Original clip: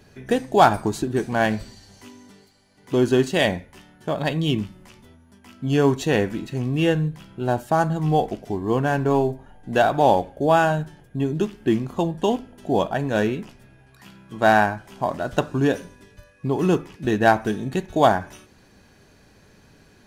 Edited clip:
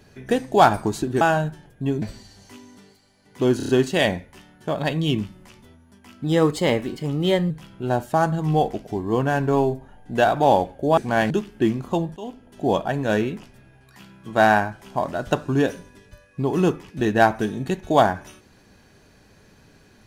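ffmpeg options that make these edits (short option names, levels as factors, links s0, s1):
-filter_complex "[0:a]asplit=12[s0][s1][s2][s3][s4][s5][s6][s7][s8][s9][s10][s11];[s0]atrim=end=1.212[s12];[s1]atrim=start=10.548:end=11.362[s13];[s2]atrim=start=1.538:end=3.122[s14];[s3]atrim=start=3.088:end=3.122[s15];[s4]atrim=start=3.088:end=3.122[s16];[s5]atrim=start=3.088:end=3.122[s17];[s6]atrim=start=3.088:end=5.644[s18];[s7]atrim=start=5.64:end=7.08,asetpts=PTS-STARTPTS,asetrate=50274,aresample=44100,atrim=end_sample=55705,asetpts=PTS-STARTPTS[s19];[s8]atrim=start=7.076:end=10.552[s20];[s9]atrim=start=1.208:end=1.542[s21];[s10]atrim=start=11.358:end=12.22,asetpts=PTS-STARTPTS,afade=t=out:st=0.858:d=0.004:c=hsin:silence=0.0891251[s22];[s11]atrim=start=12.22,asetpts=PTS-STARTPTS,afade=t=in:d=0.5:silence=0.0891251[s23];[s12][s13]acrossfade=d=0.004:c1=hsin:c2=hsin[s24];[s24][s14]acrossfade=d=0.004:c1=hsin:c2=hsin[s25];[s25][s15]acrossfade=d=0.004:c1=hsin:c2=hsin[s26];[s26][s16]acrossfade=d=0.004:c1=hsin:c2=hsin[s27];[s27][s17]acrossfade=d=0.004:c1=hsin:c2=hsin[s28];[s28][s18]acrossfade=d=0.004:c1=hsin:c2=hsin[s29];[s29][s19]acrossfade=d=0.004:c1=hsin:c2=hsin[s30];[s30][s20]acrossfade=d=0.004:c1=hsin:c2=hsin[s31];[s31][s21]acrossfade=d=0.004:c1=hsin:c2=hsin[s32];[s22][s23]concat=n=2:v=0:a=1[s33];[s32][s33]acrossfade=d=0.004:c1=hsin:c2=hsin"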